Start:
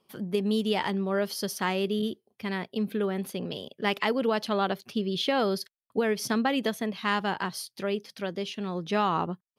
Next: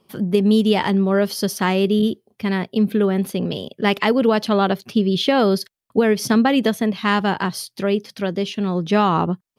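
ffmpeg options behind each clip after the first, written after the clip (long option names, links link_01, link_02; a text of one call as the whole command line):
ffmpeg -i in.wav -af "lowshelf=frequency=330:gain=7,volume=7dB" out.wav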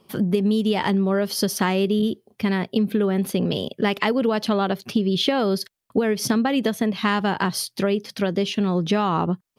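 ffmpeg -i in.wav -af "acompressor=threshold=-21dB:ratio=6,volume=3.5dB" out.wav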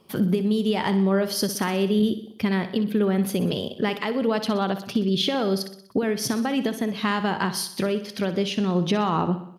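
ffmpeg -i in.wav -af "alimiter=limit=-13dB:level=0:latency=1:release=445,aecho=1:1:62|124|186|248|310|372:0.251|0.138|0.076|0.0418|0.023|0.0126" out.wav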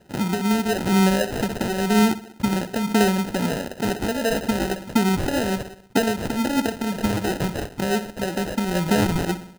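ffmpeg -i in.wav -af "aphaser=in_gain=1:out_gain=1:delay=4.2:decay=0.37:speed=1:type=sinusoidal,acrusher=samples=39:mix=1:aa=0.000001" out.wav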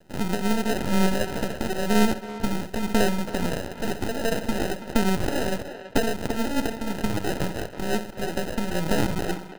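ffmpeg -i in.wav -filter_complex "[0:a]aeval=exprs='max(val(0),0)':channel_layout=same,asplit=2[link_01][link_02];[link_02]adelay=330,highpass=300,lowpass=3400,asoftclip=type=hard:threshold=-18.5dB,volume=-10dB[link_03];[link_01][link_03]amix=inputs=2:normalize=0,volume=1.5dB" out.wav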